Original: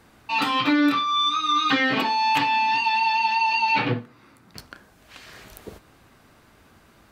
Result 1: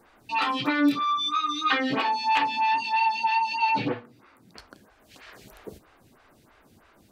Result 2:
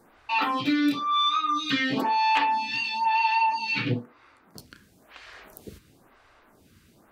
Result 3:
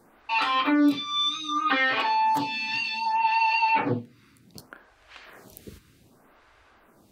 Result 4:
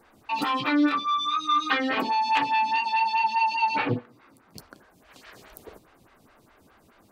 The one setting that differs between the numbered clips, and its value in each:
photocell phaser, rate: 3.1, 1, 0.65, 4.8 Hz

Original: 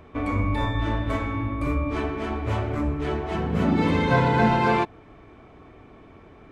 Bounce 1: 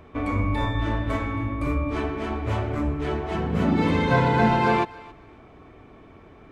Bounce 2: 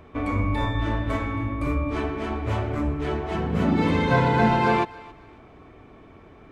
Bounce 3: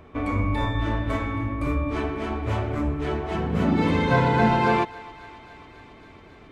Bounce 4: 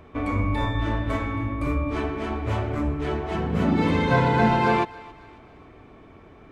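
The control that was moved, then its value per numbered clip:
thinning echo, feedback: 20, 30, 84, 48%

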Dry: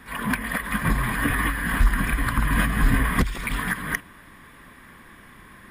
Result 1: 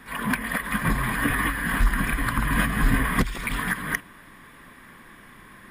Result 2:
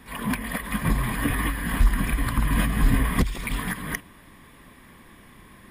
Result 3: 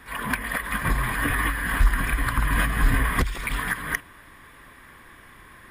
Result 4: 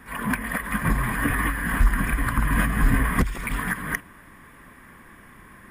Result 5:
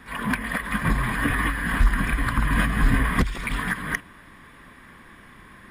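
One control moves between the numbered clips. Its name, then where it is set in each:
bell, frequency: 66, 1500, 200, 3900, 15000 Hz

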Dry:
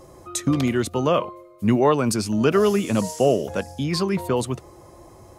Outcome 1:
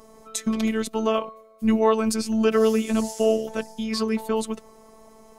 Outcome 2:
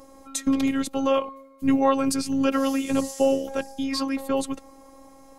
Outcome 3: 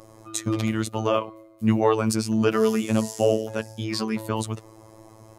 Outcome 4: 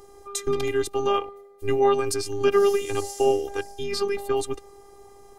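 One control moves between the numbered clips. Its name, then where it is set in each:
robotiser, frequency: 220, 270, 110, 400 Hz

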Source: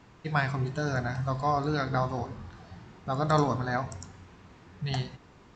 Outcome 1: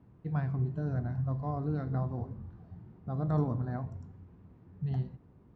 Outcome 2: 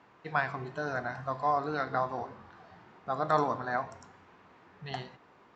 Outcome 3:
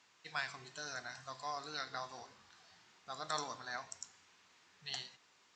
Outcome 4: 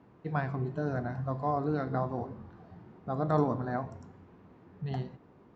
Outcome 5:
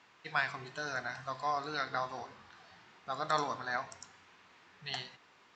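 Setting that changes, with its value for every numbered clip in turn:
band-pass, frequency: 110, 1000, 7200, 320, 2800 Hz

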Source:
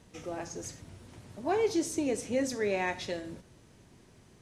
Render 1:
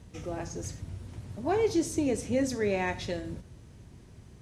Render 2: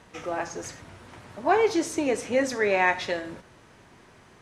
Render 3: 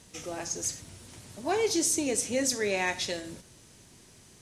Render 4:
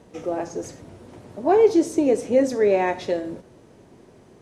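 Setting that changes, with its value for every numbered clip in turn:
bell, frequency: 62, 1300, 9500, 480 Hz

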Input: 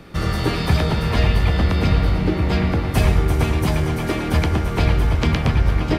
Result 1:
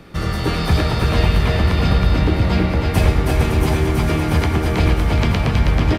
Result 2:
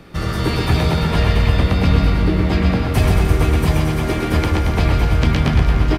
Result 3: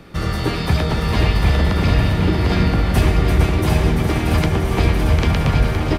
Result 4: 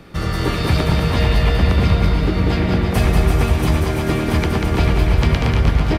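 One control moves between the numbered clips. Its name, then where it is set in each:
bouncing-ball echo, first gap: 0.32, 0.13, 0.75, 0.19 s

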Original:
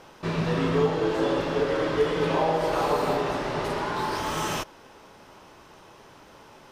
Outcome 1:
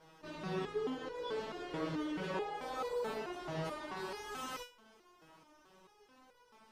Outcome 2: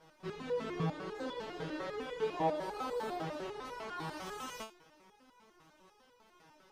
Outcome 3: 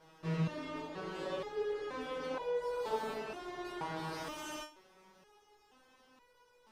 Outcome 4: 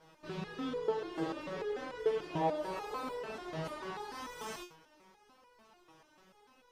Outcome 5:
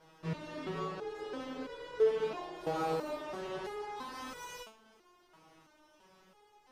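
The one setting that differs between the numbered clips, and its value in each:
stepped resonator, rate: 4.6, 10, 2.1, 6.8, 3 Hz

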